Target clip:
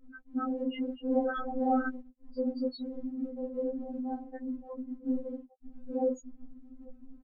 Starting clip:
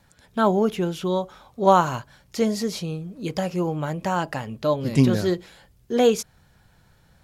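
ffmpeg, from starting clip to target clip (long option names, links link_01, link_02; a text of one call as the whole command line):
ffmpeg -i in.wav -filter_complex "[0:a]aeval=exprs='val(0)+0.5*0.075*sgn(val(0))':channel_layout=same,acrossover=split=270[link_01][link_02];[link_02]acompressor=threshold=-19dB:ratio=4[link_03];[link_01][link_03]amix=inputs=2:normalize=0,asuperstop=centerf=1000:order=8:qfactor=2.1,alimiter=limit=-15.5dB:level=0:latency=1:release=55,aecho=1:1:813:0.168,asettb=1/sr,asplit=3[link_04][link_05][link_06];[link_04]atrim=end=1.114[link_07];[link_05]atrim=start=1.11:end=1.89,asetpts=PTS-STARTPTS,afade=type=in:duration=0.004:curve=qsin,afade=type=out:start_time=0.776:duration=0.004:curve=qsin,acontrast=87[link_08];[link_06]atrim=start=1.886[link_09];[link_07][link_08]acrossfade=duration=0.004:curve1=hsin:curve2=qsin[link_10];[link_10][link_09]acrossfade=duration=0.004:curve1=qsin:curve2=hsin,asettb=1/sr,asplit=3[link_11][link_12][link_13];[link_11]atrim=end=3.164[link_14];[link_12]atrim=start=3.16:end=3.9,asetpts=PTS-STARTPTS,afade=type=in:duration=0.004:curve=qsin,afade=type=out:start_time=0.736:duration=0.004:curve=qsin,highpass=130[link_15];[link_13]atrim=start=3.896[link_16];[link_14][link_15]acrossfade=duration=0.004:curve1=hsin:curve2=qsin[link_17];[link_17][link_16]acrossfade=duration=0.004:curve1=qsin:curve2=hsin,asplit=3[link_18][link_19][link_20];[link_18]afade=type=out:start_time=4.58:duration=0.02[link_21];[link_19]aeval=exprs='0.0708*(abs(mod(val(0)/0.0708+3,4)-2)-1)':channel_layout=same,afade=type=in:start_time=4.58:duration=0.02,afade=type=out:start_time=5.06:duration=0.02[link_22];[link_20]afade=type=in:start_time=5.06:duration=0.02[link_23];[link_21][link_22][link_23]amix=inputs=3:normalize=0,afftfilt=real='re*gte(hypot(re,im),0.224)':imag='im*gte(hypot(re,im),0.224)':win_size=1024:overlap=0.75,highshelf=frequency=4300:gain=9,afftfilt=real='hypot(re,im)*cos(2*PI*random(0))':imag='hypot(re,im)*sin(2*PI*random(1))':win_size=512:overlap=0.75,afftfilt=real='re*3.46*eq(mod(b,12),0)':imag='im*3.46*eq(mod(b,12),0)':win_size=2048:overlap=0.75" out.wav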